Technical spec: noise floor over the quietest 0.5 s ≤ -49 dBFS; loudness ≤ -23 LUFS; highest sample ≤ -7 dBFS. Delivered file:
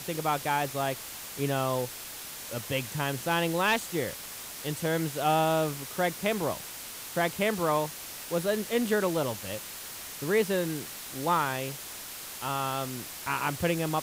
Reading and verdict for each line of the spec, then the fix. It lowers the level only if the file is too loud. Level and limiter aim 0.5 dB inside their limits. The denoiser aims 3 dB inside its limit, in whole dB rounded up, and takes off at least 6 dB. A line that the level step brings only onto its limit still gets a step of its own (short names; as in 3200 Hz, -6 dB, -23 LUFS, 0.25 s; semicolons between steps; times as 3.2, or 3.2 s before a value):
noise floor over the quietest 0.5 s -41 dBFS: fail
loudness -30.0 LUFS: OK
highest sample -15.0 dBFS: OK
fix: denoiser 11 dB, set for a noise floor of -41 dBFS